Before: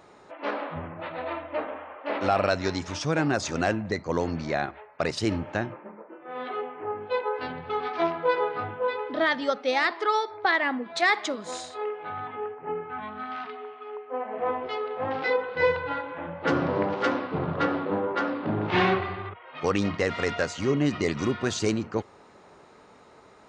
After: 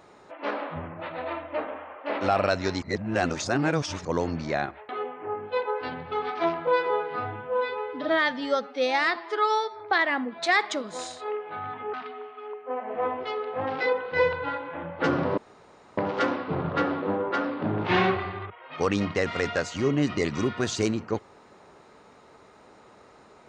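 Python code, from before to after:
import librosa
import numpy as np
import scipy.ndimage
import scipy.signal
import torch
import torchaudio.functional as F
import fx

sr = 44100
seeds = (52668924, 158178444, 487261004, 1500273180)

y = fx.edit(x, sr, fx.reverse_span(start_s=2.82, length_s=1.23),
    fx.cut(start_s=4.89, length_s=1.58),
    fx.stretch_span(start_s=8.25, length_s=2.09, factor=1.5),
    fx.cut(start_s=12.47, length_s=0.9),
    fx.insert_room_tone(at_s=16.81, length_s=0.6), tone=tone)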